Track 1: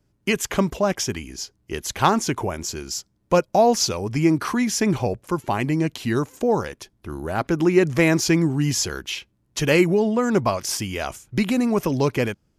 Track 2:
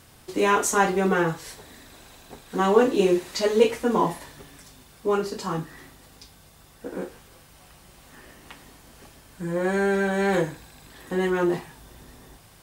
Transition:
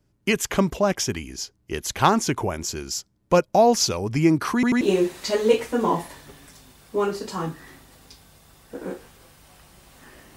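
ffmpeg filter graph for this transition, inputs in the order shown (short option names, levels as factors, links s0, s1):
-filter_complex "[0:a]apad=whole_dur=10.36,atrim=end=10.36,asplit=3[s0][s1][s2];[s0]atrim=end=4.632[s3];[s1]atrim=start=4.538:end=4.632[s4];[s2]atrim=start=4.538:end=4.632[s5];[1:a]atrim=start=2.918:end=8.47[s6];[s3][s4]acrossfade=d=0.004:c1=hsin:c2=hsin[s7];[s7][s5]acrossfade=d=0.004:c1=hsin:c2=hsin[s8];[s8][s6]acrossfade=d=0.004:c1=hsin:c2=hsin"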